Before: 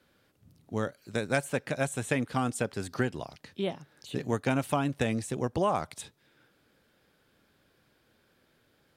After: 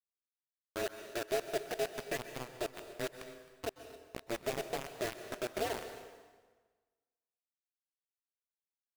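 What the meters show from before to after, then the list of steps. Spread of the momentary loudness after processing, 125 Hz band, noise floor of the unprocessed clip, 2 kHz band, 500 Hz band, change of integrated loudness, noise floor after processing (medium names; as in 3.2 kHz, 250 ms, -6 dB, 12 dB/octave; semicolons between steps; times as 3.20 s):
13 LU, -18.5 dB, -69 dBFS, -8.0 dB, -5.5 dB, -8.0 dB, under -85 dBFS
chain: in parallel at -1 dB: compression 8:1, threshold -42 dBFS, peak gain reduction 19.5 dB; on the sum: cascade formant filter e; word length cut 6-bit, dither none; ring modulator 120 Hz; on a send: delay 264 ms -19 dB; on the sum: plate-style reverb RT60 1.4 s, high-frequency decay 0.85×, pre-delay 115 ms, DRR 9.5 dB; trim +2 dB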